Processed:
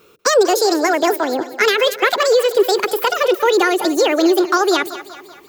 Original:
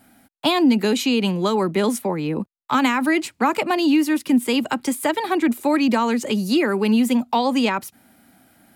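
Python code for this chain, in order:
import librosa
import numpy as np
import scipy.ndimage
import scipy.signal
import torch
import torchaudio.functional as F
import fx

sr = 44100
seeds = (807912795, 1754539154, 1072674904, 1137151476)

y = fx.speed_glide(x, sr, from_pct=174, to_pct=145)
y = fx.echo_split(y, sr, split_hz=400.0, low_ms=127, high_ms=191, feedback_pct=52, wet_db=-14.0)
y = y * librosa.db_to_amplitude(4.0)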